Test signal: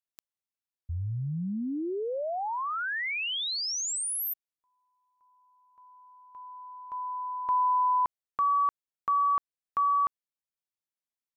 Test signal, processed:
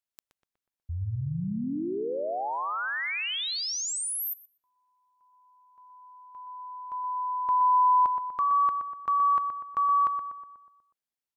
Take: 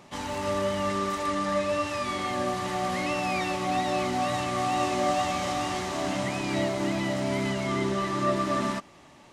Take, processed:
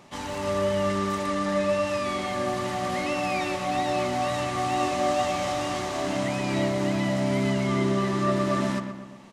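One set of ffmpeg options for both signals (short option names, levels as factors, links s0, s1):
-filter_complex "[0:a]asplit=2[s0][s1];[s1]adelay=122,lowpass=f=2300:p=1,volume=0.447,asplit=2[s2][s3];[s3]adelay=122,lowpass=f=2300:p=1,volume=0.54,asplit=2[s4][s5];[s5]adelay=122,lowpass=f=2300:p=1,volume=0.54,asplit=2[s6][s7];[s7]adelay=122,lowpass=f=2300:p=1,volume=0.54,asplit=2[s8][s9];[s9]adelay=122,lowpass=f=2300:p=1,volume=0.54,asplit=2[s10][s11];[s11]adelay=122,lowpass=f=2300:p=1,volume=0.54,asplit=2[s12][s13];[s13]adelay=122,lowpass=f=2300:p=1,volume=0.54[s14];[s0][s2][s4][s6][s8][s10][s12][s14]amix=inputs=8:normalize=0"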